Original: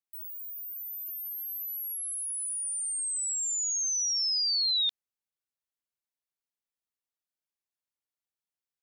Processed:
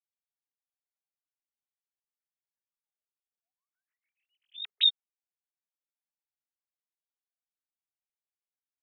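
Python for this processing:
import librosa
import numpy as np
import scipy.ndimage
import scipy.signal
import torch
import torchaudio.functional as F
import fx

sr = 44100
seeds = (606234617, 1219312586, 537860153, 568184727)

y = fx.sine_speech(x, sr)
y = y * 10.0 ** (-6.5 / 20.0)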